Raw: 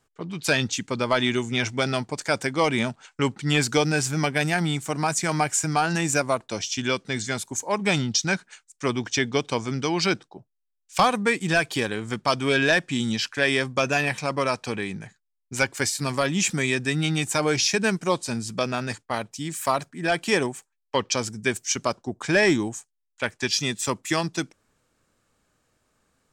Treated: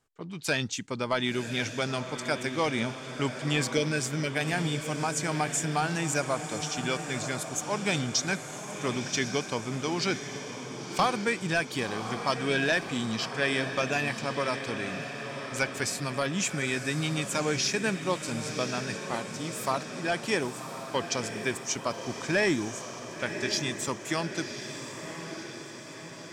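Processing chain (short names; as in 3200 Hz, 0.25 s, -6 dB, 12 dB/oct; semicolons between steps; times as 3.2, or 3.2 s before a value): 3.74–4.32 spectral delete 650–1300 Hz; 7.41–9.44 high shelf 9800 Hz +9 dB; diffused feedback echo 1.067 s, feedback 60%, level -8.5 dB; gain -6 dB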